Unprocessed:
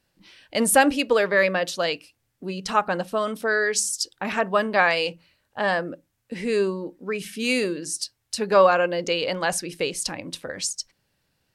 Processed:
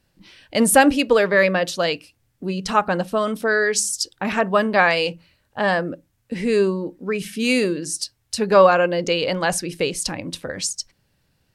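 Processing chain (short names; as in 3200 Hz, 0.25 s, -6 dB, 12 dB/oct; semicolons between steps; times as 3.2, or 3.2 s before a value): low shelf 220 Hz +7.5 dB; gain +2.5 dB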